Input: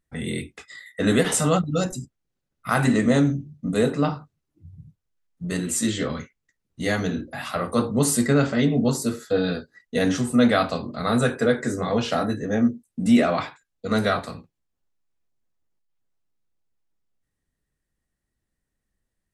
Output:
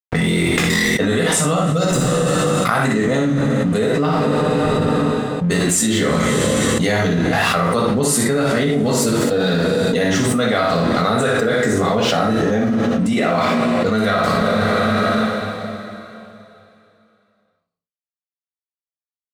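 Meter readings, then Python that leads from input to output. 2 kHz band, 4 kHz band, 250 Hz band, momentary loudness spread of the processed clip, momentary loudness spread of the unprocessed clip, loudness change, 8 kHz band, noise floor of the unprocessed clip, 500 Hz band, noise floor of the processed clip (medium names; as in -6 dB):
+9.5 dB, +9.5 dB, +5.5 dB, 2 LU, 12 LU, +6.0 dB, +8.0 dB, -81 dBFS, +8.0 dB, under -85 dBFS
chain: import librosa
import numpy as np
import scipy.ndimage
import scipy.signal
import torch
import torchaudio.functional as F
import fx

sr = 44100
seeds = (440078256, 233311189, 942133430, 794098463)

y = fx.peak_eq(x, sr, hz=93.0, db=-4.0, octaves=1.1)
y = np.sign(y) * np.maximum(np.abs(y) - 10.0 ** (-42.5 / 20.0), 0.0)
y = fx.high_shelf(y, sr, hz=7300.0, db=-5.0)
y = fx.room_early_taps(y, sr, ms=(19, 59), db=(-10.5, -5.5))
y = fx.rev_double_slope(y, sr, seeds[0], early_s=0.3, late_s=2.9, knee_db=-21, drr_db=2.5)
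y = fx.env_flatten(y, sr, amount_pct=100)
y = y * 10.0 ** (-2.0 / 20.0)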